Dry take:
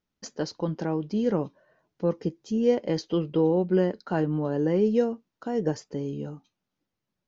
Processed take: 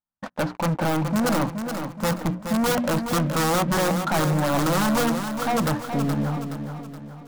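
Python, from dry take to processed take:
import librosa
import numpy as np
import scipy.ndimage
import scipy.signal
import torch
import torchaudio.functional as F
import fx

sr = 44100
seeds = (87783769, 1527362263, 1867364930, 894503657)

p1 = fx.wiener(x, sr, points=9)
p2 = scipy.signal.sosfilt(scipy.signal.butter(4, 2100.0, 'lowpass', fs=sr, output='sos'), p1)
p3 = fx.low_shelf(p2, sr, hz=180.0, db=-9.5)
p4 = fx.hum_notches(p3, sr, base_hz=60, count=5)
p5 = (np.mod(10.0 ** (22.0 / 20.0) * p4 + 1.0, 2.0) - 1.0) / 10.0 ** (22.0 / 20.0)
p6 = p4 + F.gain(torch.from_numpy(p5), -5.5).numpy()
p7 = fx.fixed_phaser(p6, sr, hz=1000.0, stages=4)
p8 = fx.leveller(p7, sr, passes=5)
y = p8 + fx.echo_feedback(p8, sr, ms=422, feedback_pct=45, wet_db=-7.5, dry=0)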